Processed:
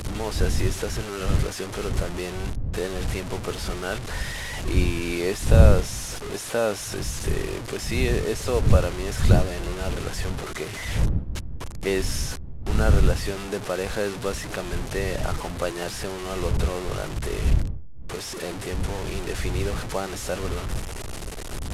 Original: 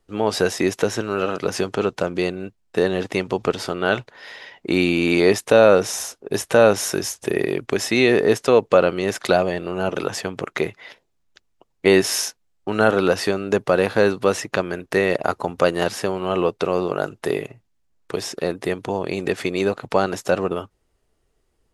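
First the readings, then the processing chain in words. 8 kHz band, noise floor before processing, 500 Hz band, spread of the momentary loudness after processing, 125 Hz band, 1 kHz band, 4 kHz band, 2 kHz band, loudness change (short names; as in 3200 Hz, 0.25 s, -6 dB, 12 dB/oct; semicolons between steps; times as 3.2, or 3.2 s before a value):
-3.5 dB, -69 dBFS, -9.5 dB, 11 LU, +6.5 dB, -8.0 dB, -4.5 dB, -7.5 dB, -6.0 dB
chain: delta modulation 64 kbps, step -18 dBFS; wind noise 82 Hz -15 dBFS; gain -10 dB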